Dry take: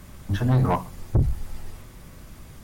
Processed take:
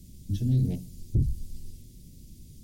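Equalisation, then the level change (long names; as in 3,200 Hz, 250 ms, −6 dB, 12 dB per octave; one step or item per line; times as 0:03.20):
Chebyshev band-stop filter 260–4,700 Hz, order 2
−3.5 dB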